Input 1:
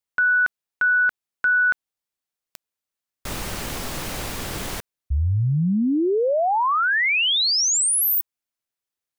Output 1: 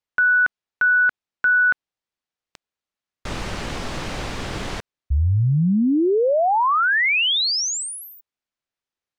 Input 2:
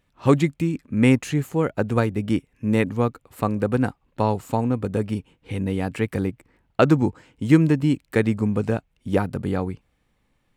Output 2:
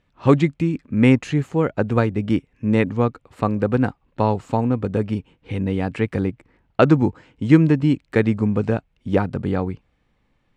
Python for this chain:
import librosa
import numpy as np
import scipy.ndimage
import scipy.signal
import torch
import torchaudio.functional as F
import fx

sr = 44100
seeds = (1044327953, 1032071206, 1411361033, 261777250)

y = fx.air_absorb(x, sr, metres=94.0)
y = y * librosa.db_to_amplitude(2.5)